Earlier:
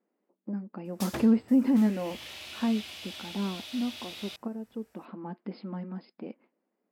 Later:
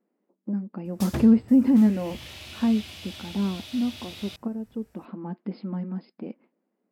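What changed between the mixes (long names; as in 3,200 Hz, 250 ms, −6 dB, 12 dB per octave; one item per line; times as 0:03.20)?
background: add bass and treble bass +5 dB, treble +1 dB
master: add low-shelf EQ 250 Hz +10 dB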